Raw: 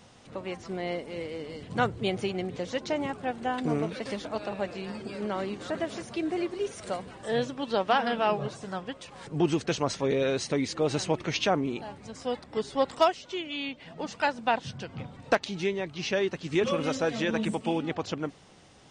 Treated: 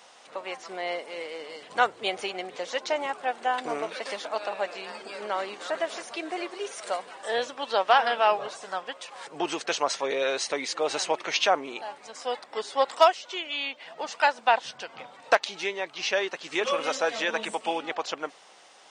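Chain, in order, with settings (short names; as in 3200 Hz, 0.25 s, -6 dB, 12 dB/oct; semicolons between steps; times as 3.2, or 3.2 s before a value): Chebyshev high-pass 720 Hz, order 2; gain +5.5 dB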